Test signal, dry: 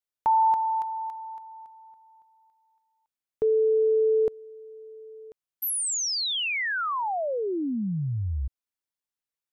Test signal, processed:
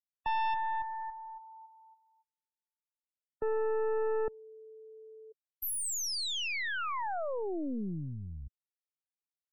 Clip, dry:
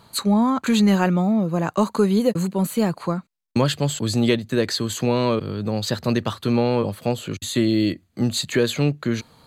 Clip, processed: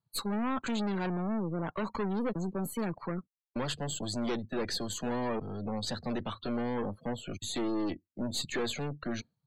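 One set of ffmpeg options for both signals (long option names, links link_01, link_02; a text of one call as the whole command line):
ffmpeg -i in.wav -filter_complex "[0:a]aeval=exprs='(tanh(20*val(0)+0.7)-tanh(0.7))/20':channel_layout=same,acrossover=split=170[link_01][link_02];[link_01]alimiter=level_in=11dB:limit=-24dB:level=0:latency=1,volume=-11dB[link_03];[link_03][link_02]amix=inputs=2:normalize=0,afftdn=noise_reduction=34:noise_floor=-40,volume=-3dB" out.wav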